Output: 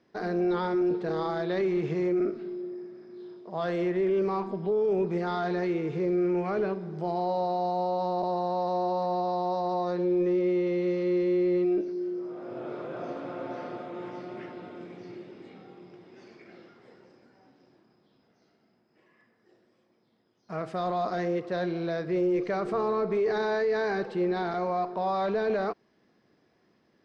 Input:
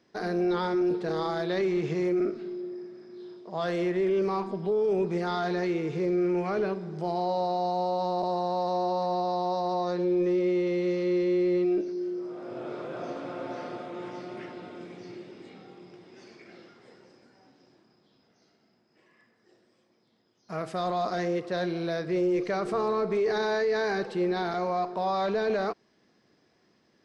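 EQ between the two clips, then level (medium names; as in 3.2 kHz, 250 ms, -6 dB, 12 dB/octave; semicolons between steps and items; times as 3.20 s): low-pass 2.7 kHz 6 dB/octave; 0.0 dB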